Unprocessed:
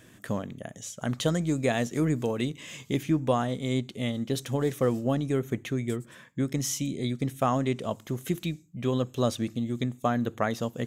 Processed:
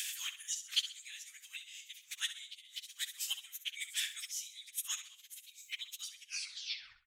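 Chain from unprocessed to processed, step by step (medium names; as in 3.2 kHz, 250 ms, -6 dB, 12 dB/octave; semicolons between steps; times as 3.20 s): tape stop on the ending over 1.52 s; in parallel at +2.5 dB: peak limiter -21 dBFS, peak gain reduction 9.5 dB; on the sum: slow attack 229 ms; inverse Chebyshev high-pass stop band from 580 Hz, stop band 70 dB; inverted gate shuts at -34 dBFS, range -27 dB; plain phase-vocoder stretch 0.65×; on a send: feedback delay 65 ms, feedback 38%, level -12 dB; on the sum: trim +18 dB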